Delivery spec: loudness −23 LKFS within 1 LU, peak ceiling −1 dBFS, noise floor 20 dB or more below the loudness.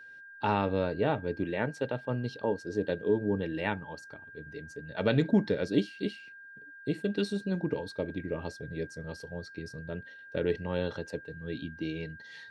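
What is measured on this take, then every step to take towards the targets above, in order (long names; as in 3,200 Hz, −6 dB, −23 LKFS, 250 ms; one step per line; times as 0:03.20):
interfering tone 1,600 Hz; level of the tone −47 dBFS; integrated loudness −32.5 LKFS; sample peak −12.5 dBFS; target loudness −23.0 LKFS
→ notch filter 1,600 Hz, Q 30
level +9.5 dB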